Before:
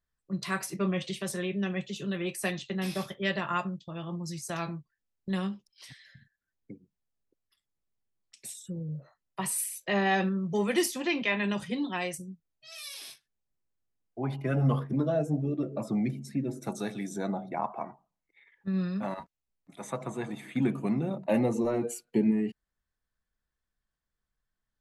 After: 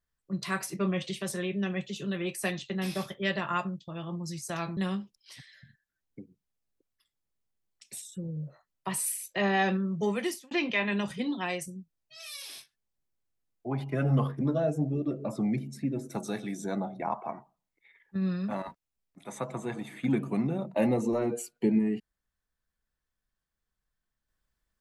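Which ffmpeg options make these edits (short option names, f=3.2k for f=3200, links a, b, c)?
-filter_complex "[0:a]asplit=3[a][b][c];[a]atrim=end=4.772[d];[b]atrim=start=5.288:end=11.03,asetpts=PTS-STARTPTS,afade=t=out:st=5.282:d=0.46[e];[c]atrim=start=11.03,asetpts=PTS-STARTPTS,afade=t=in:d=0.004:c=hsin[f];[e][f]concat=n=2:v=0:a=1[g];[d][g]acrossfade=d=0.004:c1=hsin:c2=hsin"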